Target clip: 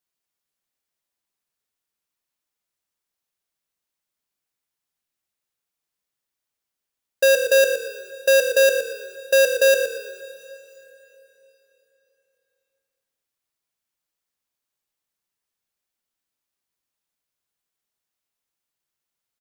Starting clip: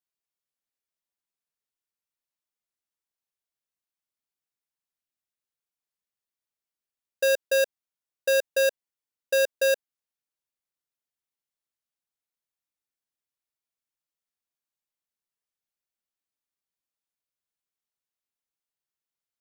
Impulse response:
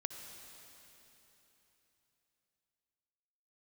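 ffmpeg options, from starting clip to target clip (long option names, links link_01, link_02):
-filter_complex "[0:a]asplit=5[link_01][link_02][link_03][link_04][link_05];[link_02]adelay=118,afreqshift=-39,volume=-11dB[link_06];[link_03]adelay=236,afreqshift=-78,volume=-20.4dB[link_07];[link_04]adelay=354,afreqshift=-117,volume=-29.7dB[link_08];[link_05]adelay=472,afreqshift=-156,volume=-39.1dB[link_09];[link_01][link_06][link_07][link_08][link_09]amix=inputs=5:normalize=0,asplit=2[link_10][link_11];[1:a]atrim=start_sample=2205,adelay=116[link_12];[link_11][link_12]afir=irnorm=-1:irlink=0,volume=-10dB[link_13];[link_10][link_13]amix=inputs=2:normalize=0,volume=6.5dB"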